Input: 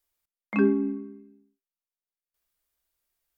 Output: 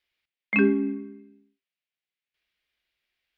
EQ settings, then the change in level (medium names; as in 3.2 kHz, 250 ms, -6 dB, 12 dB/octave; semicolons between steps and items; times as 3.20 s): high-pass 86 Hz 6 dB/octave; distance through air 340 m; resonant high shelf 1.6 kHz +12 dB, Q 1.5; +2.0 dB